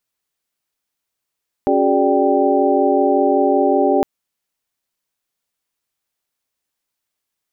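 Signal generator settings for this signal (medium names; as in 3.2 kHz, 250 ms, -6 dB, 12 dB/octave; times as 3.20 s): chord C#4/F#4/G#4/D5/G5 sine, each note -18.5 dBFS 2.36 s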